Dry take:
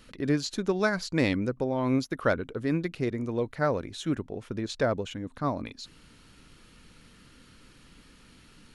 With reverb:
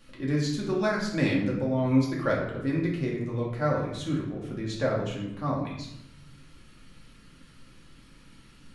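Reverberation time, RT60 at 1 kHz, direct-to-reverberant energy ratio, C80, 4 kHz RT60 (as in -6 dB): 0.80 s, 0.80 s, -4.0 dB, 6.5 dB, 0.65 s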